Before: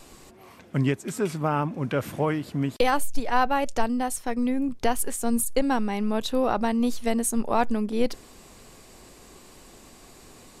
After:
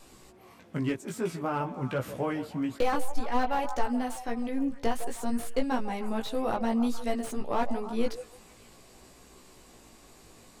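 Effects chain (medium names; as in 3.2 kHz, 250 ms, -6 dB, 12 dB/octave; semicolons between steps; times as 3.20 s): repeats whose band climbs or falls 153 ms, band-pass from 620 Hz, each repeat 0.7 oct, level -10 dB; chorus 0.54 Hz, delay 15.5 ms, depth 2.6 ms; slew-rate limiter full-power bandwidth 80 Hz; trim -2 dB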